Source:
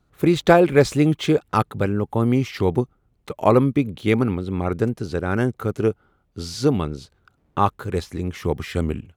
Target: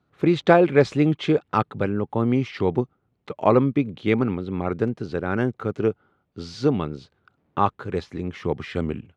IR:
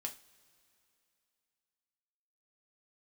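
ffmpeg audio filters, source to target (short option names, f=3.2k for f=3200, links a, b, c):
-af "highpass=110,lowpass=3.9k,volume=-1.5dB"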